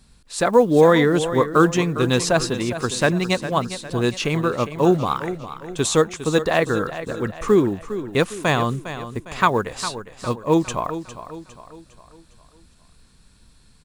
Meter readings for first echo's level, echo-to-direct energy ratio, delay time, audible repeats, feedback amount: -12.0 dB, -11.0 dB, 0.406 s, 4, 45%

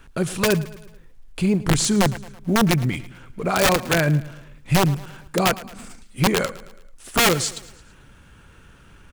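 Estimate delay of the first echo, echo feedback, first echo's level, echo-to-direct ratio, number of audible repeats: 0.11 s, 50%, -18.0 dB, -17.0 dB, 3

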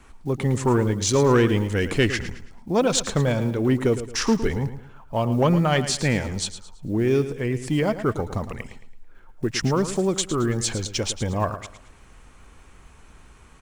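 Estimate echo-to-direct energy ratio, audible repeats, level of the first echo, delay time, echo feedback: -11.5 dB, 3, -12.0 dB, 0.11 s, 35%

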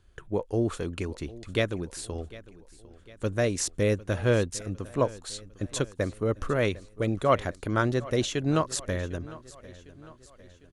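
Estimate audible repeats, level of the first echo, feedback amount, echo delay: 3, -19.0 dB, 51%, 0.753 s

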